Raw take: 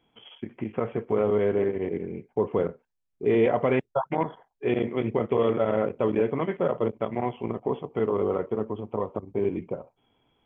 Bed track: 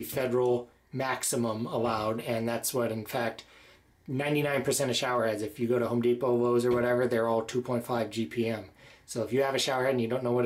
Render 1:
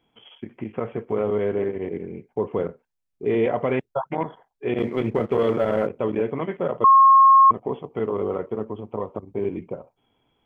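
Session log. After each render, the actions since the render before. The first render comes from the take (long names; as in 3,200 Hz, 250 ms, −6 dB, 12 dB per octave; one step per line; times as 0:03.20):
0:04.78–0:05.87: leveller curve on the samples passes 1
0:06.84–0:07.51: beep over 1,080 Hz −9 dBFS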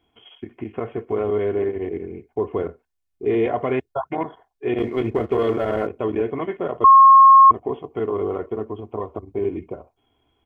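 parametric band 75 Hz +10 dB 0.42 octaves
comb filter 2.8 ms, depth 46%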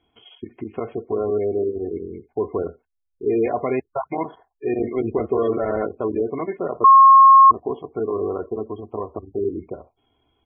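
gate on every frequency bin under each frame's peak −25 dB strong
dynamic equaliser 120 Hz, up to −4 dB, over −44 dBFS, Q 2.9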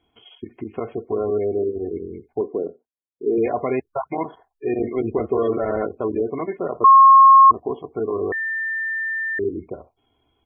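0:02.41–0:03.38: flat-topped band-pass 350 Hz, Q 0.77
0:08.32–0:09.39: beep over 1,790 Hz −22 dBFS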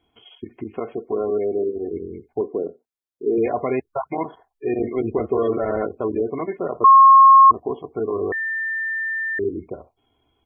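0:00.74–0:01.92: parametric band 100 Hz −9.5 dB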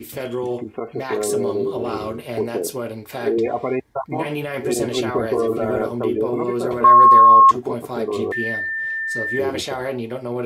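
mix in bed track +1.5 dB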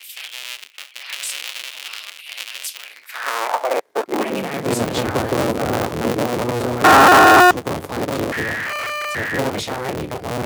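sub-harmonics by changed cycles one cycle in 3, inverted
high-pass filter sweep 2,800 Hz → 88 Hz, 0:02.80–0:04.92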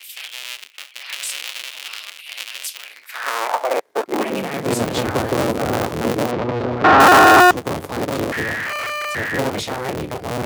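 0:06.31–0:07.00: high-frequency loss of the air 220 metres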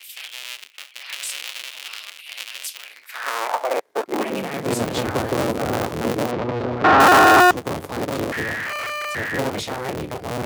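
level −2.5 dB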